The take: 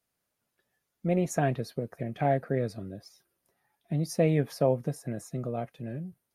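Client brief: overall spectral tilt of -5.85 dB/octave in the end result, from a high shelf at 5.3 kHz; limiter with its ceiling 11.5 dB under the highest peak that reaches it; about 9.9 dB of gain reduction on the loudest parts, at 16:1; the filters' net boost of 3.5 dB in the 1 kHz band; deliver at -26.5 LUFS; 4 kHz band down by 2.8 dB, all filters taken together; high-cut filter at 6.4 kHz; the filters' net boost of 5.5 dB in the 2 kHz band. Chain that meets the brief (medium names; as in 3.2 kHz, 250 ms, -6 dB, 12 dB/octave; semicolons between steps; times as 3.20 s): low-pass 6.4 kHz; peaking EQ 1 kHz +5.5 dB; peaking EQ 2 kHz +6 dB; peaking EQ 4 kHz -6.5 dB; treble shelf 5.3 kHz +3.5 dB; compression 16:1, threshold -27 dBFS; trim +11.5 dB; peak limiter -14 dBFS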